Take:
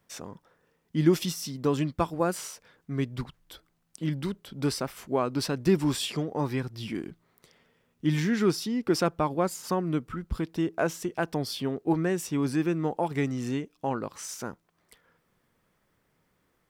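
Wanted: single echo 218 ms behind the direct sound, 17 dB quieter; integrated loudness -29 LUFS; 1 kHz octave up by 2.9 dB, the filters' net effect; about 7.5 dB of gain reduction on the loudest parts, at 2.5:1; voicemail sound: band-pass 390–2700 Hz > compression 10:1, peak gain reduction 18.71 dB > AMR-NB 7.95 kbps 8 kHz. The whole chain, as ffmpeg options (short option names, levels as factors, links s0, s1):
-af "equalizer=f=1000:t=o:g=4,acompressor=threshold=0.0447:ratio=2.5,highpass=390,lowpass=2700,aecho=1:1:218:0.141,acompressor=threshold=0.00708:ratio=10,volume=10.6" -ar 8000 -c:a libopencore_amrnb -b:a 7950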